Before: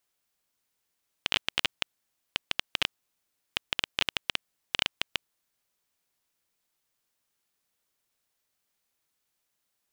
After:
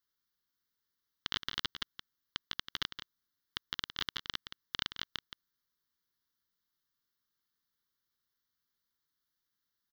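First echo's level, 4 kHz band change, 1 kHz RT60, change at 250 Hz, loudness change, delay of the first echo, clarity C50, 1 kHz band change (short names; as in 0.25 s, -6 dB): -9.5 dB, -7.0 dB, none, -5.5 dB, -8.0 dB, 0.171 s, none, -6.5 dB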